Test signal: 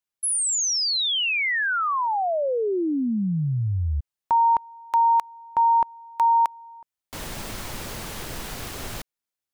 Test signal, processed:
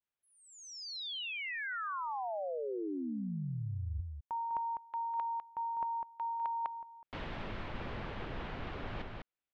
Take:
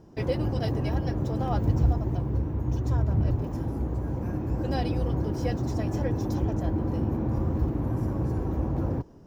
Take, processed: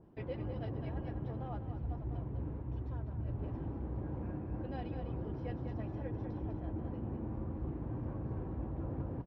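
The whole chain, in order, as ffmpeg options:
-af "lowpass=f=3.3k:w=0.5412,lowpass=f=3.3k:w=1.3066,aecho=1:1:201:0.447,areverse,acompressor=threshold=-32dB:ratio=12:attack=17:release=914:knee=6:detection=peak,areverse,adynamicequalizer=threshold=0.00282:dfrequency=2100:dqfactor=0.7:tfrequency=2100:tqfactor=0.7:attack=5:release=100:ratio=0.375:range=2.5:mode=cutabove:tftype=highshelf,volume=-2.5dB"

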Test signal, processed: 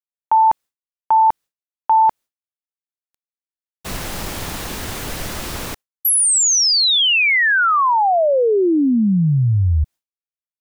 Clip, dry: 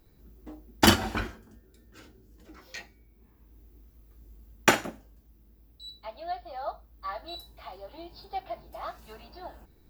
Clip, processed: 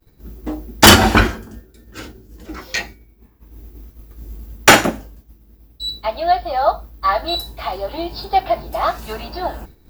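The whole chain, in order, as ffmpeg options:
-af "apsyclip=20dB,agate=range=-33dB:threshold=-30dB:ratio=3:detection=peak,volume=-1dB"

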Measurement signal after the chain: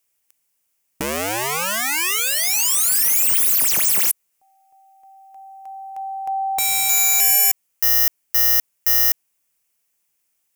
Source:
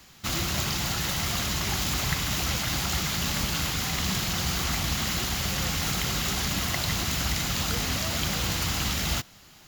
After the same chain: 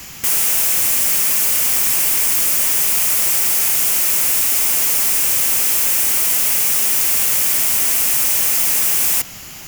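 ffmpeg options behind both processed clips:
-filter_complex "[0:a]asplit=2[a][b];[b]alimiter=limit=-22dB:level=0:latency=1:release=57,volume=1dB[c];[a][c]amix=inputs=2:normalize=0,aeval=exprs='(mod(20*val(0)+1,2)-1)/20':c=same,aexciter=amount=1.4:drive=4.5:freq=2.1k,volume=7.5dB"

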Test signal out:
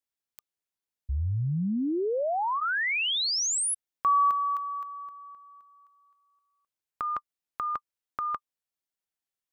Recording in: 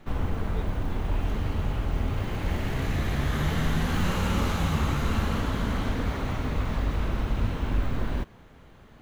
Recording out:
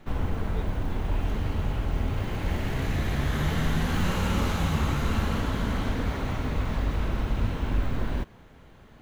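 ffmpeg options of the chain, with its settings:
-af "bandreject=f=1.2k:w=28"

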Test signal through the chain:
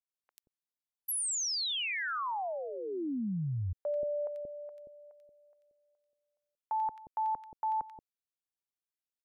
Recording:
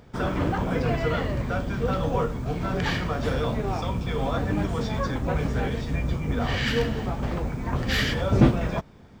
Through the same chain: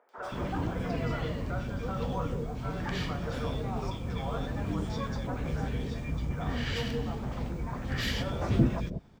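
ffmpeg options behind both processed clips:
-filter_complex "[0:a]acrossover=split=490|1800[a][b][c];[c]adelay=90[d];[a]adelay=180[e];[e][b][d]amix=inputs=3:normalize=0,volume=-6dB"

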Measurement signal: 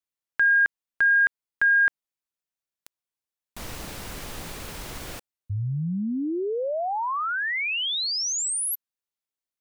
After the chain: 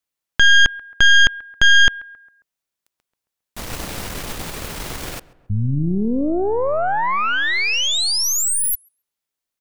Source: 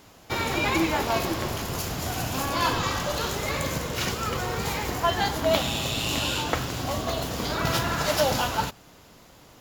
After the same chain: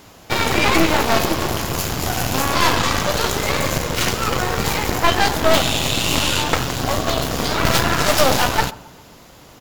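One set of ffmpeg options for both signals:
-filter_complex "[0:a]asplit=2[a][b];[b]adelay=135,lowpass=f=1.9k:p=1,volume=-19dB,asplit=2[c][d];[d]adelay=135,lowpass=f=1.9k:p=1,volume=0.51,asplit=2[e][f];[f]adelay=135,lowpass=f=1.9k:p=1,volume=0.51,asplit=2[g][h];[h]adelay=135,lowpass=f=1.9k:p=1,volume=0.51[i];[a][c][e][g][i]amix=inputs=5:normalize=0,aeval=exprs='0.473*(cos(1*acos(clip(val(0)/0.473,-1,1)))-cos(1*PI/2))+0.0119*(cos(3*acos(clip(val(0)/0.473,-1,1)))-cos(3*PI/2))+0.0944*(cos(5*acos(clip(val(0)/0.473,-1,1)))-cos(5*PI/2))+0.15*(cos(8*acos(clip(val(0)/0.473,-1,1)))-cos(8*PI/2))':c=same,volume=1.5dB"

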